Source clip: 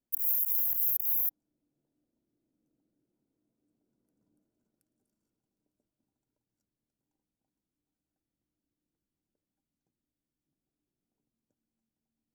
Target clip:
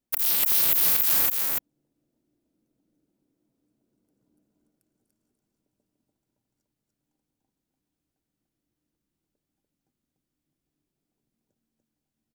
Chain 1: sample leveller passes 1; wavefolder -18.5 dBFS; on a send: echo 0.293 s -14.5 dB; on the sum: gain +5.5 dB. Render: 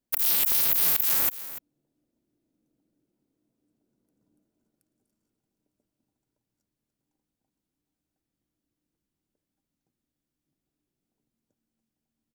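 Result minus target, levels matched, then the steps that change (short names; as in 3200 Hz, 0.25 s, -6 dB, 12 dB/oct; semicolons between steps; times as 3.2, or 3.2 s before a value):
echo-to-direct -12 dB
change: echo 0.293 s -2.5 dB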